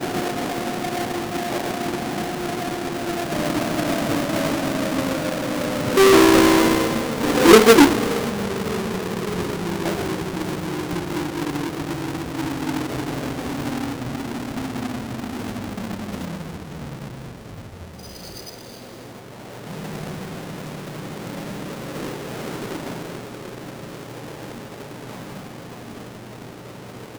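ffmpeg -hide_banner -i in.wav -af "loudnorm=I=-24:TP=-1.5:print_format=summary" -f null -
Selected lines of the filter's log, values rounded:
Input Integrated:    -21.8 LUFS
Input True Peak:      -1.2 dBTP
Input LRA:            21.6 LU
Input Threshold:     -33.5 LUFS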